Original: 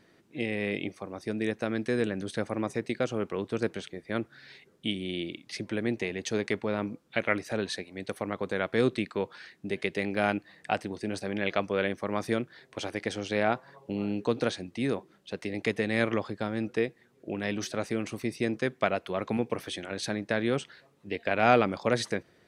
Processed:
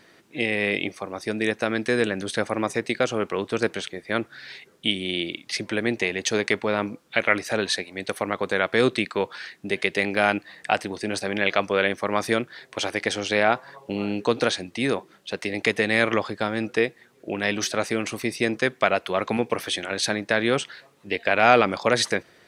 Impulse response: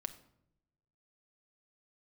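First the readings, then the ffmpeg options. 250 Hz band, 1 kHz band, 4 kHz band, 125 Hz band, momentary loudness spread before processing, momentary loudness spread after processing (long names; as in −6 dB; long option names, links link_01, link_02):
+3.5 dB, +7.0 dB, +10.5 dB, +2.0 dB, 9 LU, 9 LU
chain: -filter_complex "[0:a]lowshelf=frequency=460:gain=-9.5,asplit=2[link_01][link_02];[link_02]alimiter=limit=-18.5dB:level=0:latency=1,volume=-1.5dB[link_03];[link_01][link_03]amix=inputs=2:normalize=0,volume=5.5dB"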